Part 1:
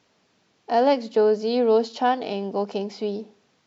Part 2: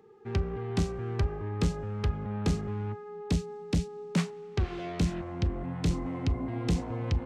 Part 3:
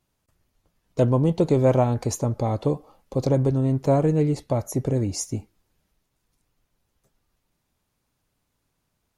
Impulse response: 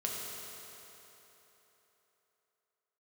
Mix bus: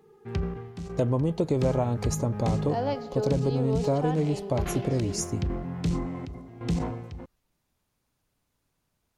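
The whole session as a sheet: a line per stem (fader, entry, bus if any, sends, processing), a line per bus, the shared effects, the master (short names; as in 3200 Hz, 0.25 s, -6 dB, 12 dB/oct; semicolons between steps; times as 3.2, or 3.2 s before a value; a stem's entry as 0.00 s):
-10.5 dB, 2.00 s, send -16 dB, dry
-2.0 dB, 0.00 s, send -22 dB, step gate "xxx..x...x.x.xxx" 84 bpm -12 dB; bell 160 Hz +7.5 dB 0.27 oct; sustainer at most 61 dB/s
-2.0 dB, 0.00 s, no send, dry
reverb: on, RT60 3.7 s, pre-delay 4 ms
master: compressor 3:1, threshold -22 dBFS, peak gain reduction 6.5 dB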